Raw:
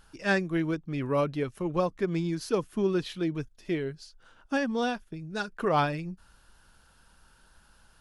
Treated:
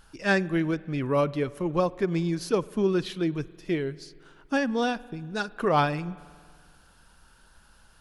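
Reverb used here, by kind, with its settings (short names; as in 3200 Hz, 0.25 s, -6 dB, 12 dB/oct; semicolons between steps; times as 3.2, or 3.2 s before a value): spring tank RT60 2 s, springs 47 ms, chirp 20 ms, DRR 19.5 dB; gain +2.5 dB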